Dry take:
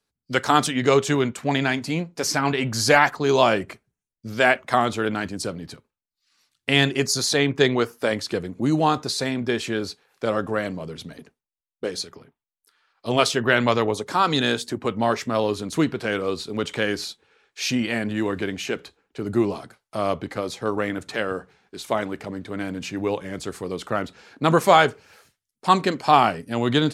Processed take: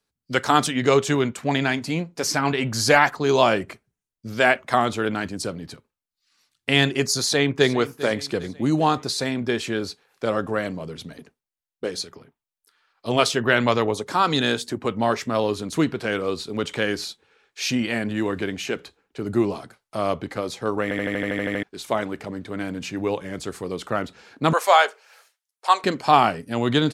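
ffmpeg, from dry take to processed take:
ffmpeg -i in.wav -filter_complex "[0:a]asplit=2[link_01][link_02];[link_02]afade=type=in:start_time=7.19:duration=0.01,afade=type=out:start_time=7.71:duration=0.01,aecho=0:1:400|800|1200|1600:0.158489|0.0792447|0.0396223|0.0198112[link_03];[link_01][link_03]amix=inputs=2:normalize=0,asettb=1/sr,asplit=3[link_04][link_05][link_06];[link_04]atrim=end=24.534[link_07];[link_05]atrim=start=24.53:end=25.84,asetpts=PTS-STARTPTS,afade=type=in:duration=0.004:curve=qsin,afade=type=out:start_time=1.306:duration=0.004:curve=qsin,highpass=frequency=540:width=0.5412,highpass=frequency=540:width=1.3066[link_08];[link_06]atrim=start=25.836[link_09];[link_07][link_08]acrossfade=duration=0.004:curve1=hsin:curve2=qsin[link_10];[link_10][link_09]acrossfade=duration=0.004:curve1=qsin:curve2=hsin,asplit=11[link_11][link_12][link_13][link_14][link_15][link_16][link_17][link_18][link_19][link_20][link_21];[link_11]atrim=end=20.912[link_22];[link_12]atrim=start=20.828:end=20.912[link_23];[link_13]atrim=start=20.828:end=20.912[link_24];[link_14]atrim=start=20.828:end=20.912[link_25];[link_15]atrim=start=20.828:end=20.912[link_26];[link_16]atrim=start=20.828:end=20.912[link_27];[link_17]atrim=start=20.828:end=20.912[link_28];[link_18]atrim=start=20.828:end=20.912[link_29];[link_19]atrim=start=20.828:end=20.912[link_30];[link_20]atrim=start=20.828:end=20.912[link_31];[link_21]atrim=start=21.628[link_32];[link_22][link_23]acrossfade=duration=0.004:curve1=hsin:curve2=hsin[link_33];[link_33][link_24]acrossfade=duration=0.004:curve1=hsin:curve2=hsin[link_34];[link_34][link_25]acrossfade=duration=0.004:curve1=hsin:curve2=hsin[link_35];[link_35][link_26]acrossfade=duration=0.004:curve1=hsin:curve2=hsin[link_36];[link_36][link_27]acrossfade=duration=0.004:curve1=hsin:curve2=hsin[link_37];[link_37][link_28]acrossfade=duration=0.004:curve1=hsin:curve2=hsin[link_38];[link_38][link_29]acrossfade=duration=0.004:curve1=hsin:curve2=hsin[link_39];[link_39][link_30]acrossfade=duration=0.004:curve1=hsin:curve2=hsin[link_40];[link_40][link_31]acrossfade=duration=0.004:curve1=hsin:curve2=hsin[link_41];[link_41][link_32]acrossfade=duration=0.004:curve1=hsin:curve2=hsin" out.wav

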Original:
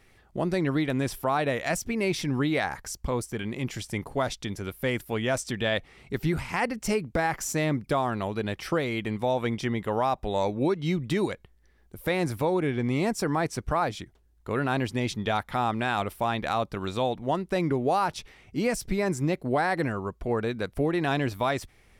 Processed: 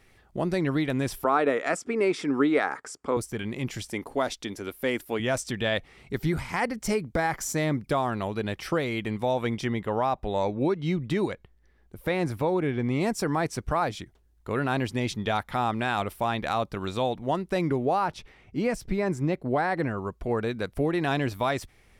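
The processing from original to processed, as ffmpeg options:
ffmpeg -i in.wav -filter_complex "[0:a]asettb=1/sr,asplit=3[link_01][link_02][link_03];[link_01]atrim=end=1.244[link_04];[link_02]atrim=start=1.24:end=3.17,asetpts=PTS-STARTPTS,afade=type=in:duration=0.004:curve=qsin,afade=type=out:start_time=1.926:duration=0.004:curve=qsin,highpass=270,equalizer=frequency=280:width_type=q:width=4:gain=7,equalizer=frequency=430:width_type=q:width=4:gain=8,equalizer=frequency=1300:width_type=q:width=4:gain=9,equalizer=frequency=2900:width_type=q:width=4:gain=-4,equalizer=frequency=4100:width_type=q:width=4:gain=-7,equalizer=frequency=6000:width_type=q:width=4:gain=-7,lowpass=frequency=8600:width=0.5412,lowpass=frequency=8600:width=1.3066[link_05];[link_03]atrim=start=3.166[link_06];[link_04][link_05]acrossfade=duration=0.004:curve1=hsin:curve2=qsin[link_07];[link_07][link_06]acrossfade=duration=0.004:curve1=qsin:curve2=hsin,asettb=1/sr,asplit=3[link_08][link_09][link_10];[link_08]atrim=end=3.894[link_11];[link_09]atrim=start=3.89:end=5.2,asetpts=PTS-STARTPTS,afade=type=in:duration=0.004:curve=qsin,afade=type=out:start_time=1.306:duration=0.004:curve=qsin,lowshelf=frequency=200:width_type=q:width=1.5:gain=-8[link_12];[link_10]atrim=start=5.196[link_13];[link_11][link_12]acrossfade=duration=0.004:curve1=hsin:curve2=qsin[link_14];[link_14][link_13]acrossfade=duration=0.004:curve1=qsin:curve2=hsin,asettb=1/sr,asplit=3[link_15][link_16][link_17];[link_15]atrim=end=6.144[link_18];[link_16]atrim=start=6.14:end=7.77,asetpts=PTS-STARTPTS,afade=type=in:duration=0.004:curve=qsin,afade=type=out:start_time=1.626:duration=0.004:curve=qsin,bandreject=frequency=2700:width=9.4[link_19];[link_17]atrim=start=7.766[link_20];[link_18][link_19]acrossfade=duration=0.004:curve1=hsin:curve2=qsin[link_21];[link_21][link_20]acrossfade=duration=0.004:curve1=qsin:curve2=hsin,asettb=1/sr,asplit=3[link_22][link_23][link_24];[link_22]atrim=end=9.794[link_25];[link_23]atrim=start=9.79:end=13.01,asetpts=PTS-STARTPTS,afade=type=in:duration=0.004:curve=qsin,afade=type=out:start_time=3.216:duration=0.004:curve=qsin,highshelf=frequency=4500:gain=-7.5[link_26];[link_24]atrim=start=13.006[link_27];[link_25][link_26]acrossfade=duration=0.004:curve1=hsin:curve2=qsin[link_28];[link_28][link_27]acrossfade=duration=0.004:curve1=qsin:curve2=hsin,asettb=1/sr,asplit=3[link_29][link_30][link_31];[link_29]atrim=end=17.854[link_32];[link_30]atrim=start=17.85:end=19.98,asetpts=PTS-STARTPTS,afade=type=in:duration=0.004:curve=qsin,afade=type=out:start_time=2.126:duration=0.004:curve=qsin,highshelf=frequency=3900:gain=-10[link_33];[link_31]atrim=start=19.976[link_34];[link_32][link_33]acrossfade=duration=0.004:curve1=hsin:curve2=qsin[link_35];[link_35][link_34]acrossfade=duration=0.004:curve1=qsin:curve2=hsin" out.wav

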